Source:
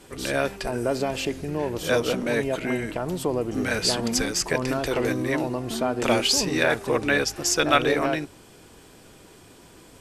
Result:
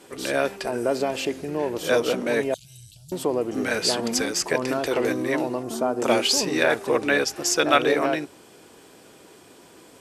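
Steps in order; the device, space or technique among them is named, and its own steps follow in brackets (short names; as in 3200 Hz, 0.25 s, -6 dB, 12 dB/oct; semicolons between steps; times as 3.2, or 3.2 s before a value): filter by subtraction (in parallel: LPF 390 Hz 12 dB/oct + phase invert); 2.54–3.12 on the sum: inverse Chebyshev band-stop 230–2100 Hz, stop band 40 dB; 5.63–6.09 band shelf 2700 Hz -8 dB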